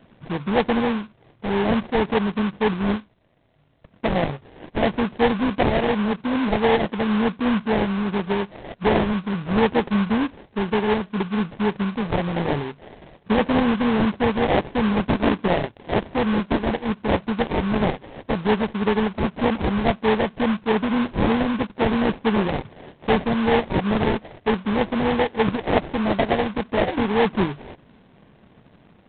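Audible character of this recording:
aliases and images of a low sample rate 1,300 Hz, jitter 20%
G.726

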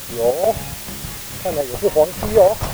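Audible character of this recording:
chopped level 2.3 Hz, depth 60%, duty 70%
a quantiser's noise floor 6 bits, dither triangular

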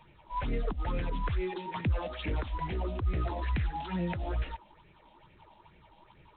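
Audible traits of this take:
phaser sweep stages 6, 2.3 Hz, lowest notch 100–1,100 Hz
G.726

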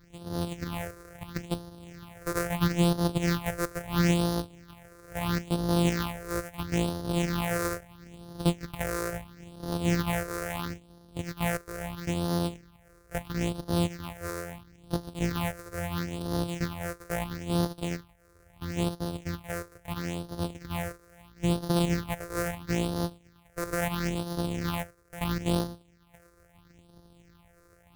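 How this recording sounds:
a buzz of ramps at a fixed pitch in blocks of 256 samples
phaser sweep stages 6, 0.75 Hz, lowest notch 210–2,300 Hz

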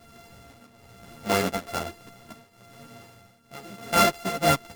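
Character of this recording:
a buzz of ramps at a fixed pitch in blocks of 64 samples
tremolo triangle 1.1 Hz, depth 85%
a shimmering, thickened sound

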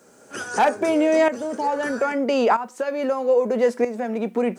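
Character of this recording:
tremolo saw up 0.78 Hz, depth 75%
a quantiser's noise floor 12 bits, dither triangular

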